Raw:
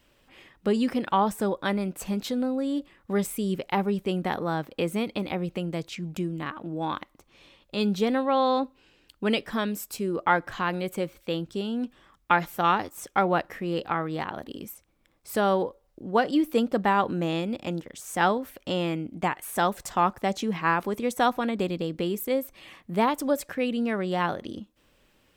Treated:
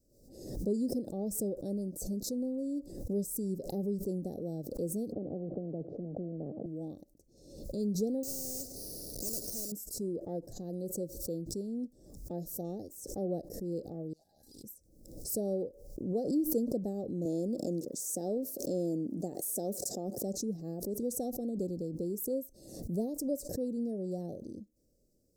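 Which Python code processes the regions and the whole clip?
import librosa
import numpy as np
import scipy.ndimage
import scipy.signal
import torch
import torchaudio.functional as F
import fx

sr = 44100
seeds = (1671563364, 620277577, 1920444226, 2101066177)

y = fx.chain(x, sr, fx.cheby1_bandpass(low_hz=150.0, high_hz=780.0, order=3),
    fx.low_shelf(hz=230.0, db=10.5),
    fx.spectral_comp(ratio=4.0), at=(5.12, 6.66))
y = fx.chain(y, sr, fx.delta_mod(bps=32000, step_db=-39.5),
    fx.resample_bad(factor=6, down='filtered', up='hold'),
    fx.spectral_comp(ratio=4.0), at=(8.23, 9.72))
y = fx.chain(y, sr, fx.high_shelf(hz=2300.0, db=11.5),
    fx.comb_fb(f0_hz=820.0, decay_s=0.22, harmonics='all', damping=0.0, mix_pct=100),
    fx.doppler_dist(depth_ms=0.36), at=(14.13, 14.64))
y = fx.chain(y, sr, fx.highpass(hz=210.0, slope=12),
    fx.env_flatten(amount_pct=50), at=(17.25, 20.23))
y = scipy.signal.sosfilt(scipy.signal.cheby2(4, 40, [940.0, 3300.0], 'bandstop', fs=sr, output='sos'), y)
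y = fx.pre_swell(y, sr, db_per_s=68.0)
y = y * 10.0 ** (-7.5 / 20.0)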